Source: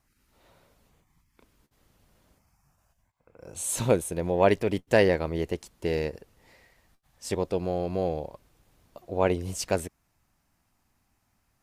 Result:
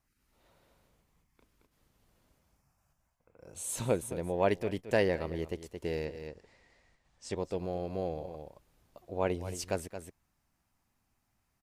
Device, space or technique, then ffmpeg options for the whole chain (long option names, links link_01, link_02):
ducked delay: -filter_complex "[0:a]asettb=1/sr,asplit=3[link_01][link_02][link_03];[link_01]atrim=end=6.054[link_04];[link_02]atrim=start=6.05:end=7.37,asetpts=PTS-STARTPTS,afade=type=in:duration=0.004:curve=qsin,afade=type=out:start_time=1.316:duration=0.004:curve=qsin,lowpass=frequency=8300:width=0.5412,lowpass=frequency=8300:width=1.3066[link_05];[link_03]atrim=start=7.366[link_06];[link_04][link_05]acrossfade=duration=0.004:curve1=hsin:curve2=qsin[link_07];[link_07][link_06]acrossfade=duration=0.004:curve1=qsin:curve2=hsin,asplit=3[link_08][link_09][link_10];[link_09]adelay=222,volume=-4.5dB[link_11];[link_10]apad=whole_len=522268[link_12];[link_11][link_12]sidechaincompress=threshold=-36dB:ratio=6:attack=6.8:release=242[link_13];[link_08][link_13]amix=inputs=2:normalize=0,volume=-7dB"